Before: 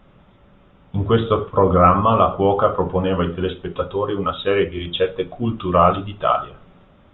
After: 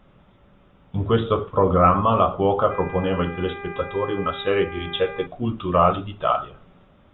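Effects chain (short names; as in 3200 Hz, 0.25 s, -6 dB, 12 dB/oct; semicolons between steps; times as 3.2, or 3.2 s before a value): 2.7–5.25 buzz 400 Hz, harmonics 6, -33 dBFS -2 dB/oct; gain -3 dB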